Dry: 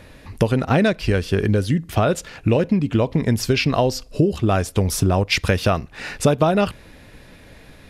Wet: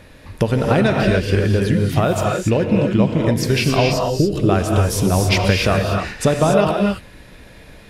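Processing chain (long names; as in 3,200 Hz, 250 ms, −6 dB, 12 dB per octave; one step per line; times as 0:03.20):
reverb whose tail is shaped and stops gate 310 ms rising, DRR 0.5 dB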